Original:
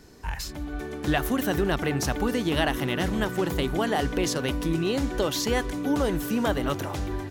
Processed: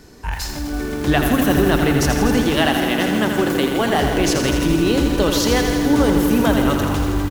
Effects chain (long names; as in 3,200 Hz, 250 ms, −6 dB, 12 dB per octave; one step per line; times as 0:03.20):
0:02.43–0:03.79: Butterworth high-pass 170 Hz 48 dB per octave
echo with shifted repeats 125 ms, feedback 62%, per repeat −50 Hz, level −12 dB
feedback echo at a low word length 82 ms, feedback 80%, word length 7 bits, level −6.5 dB
level +6.5 dB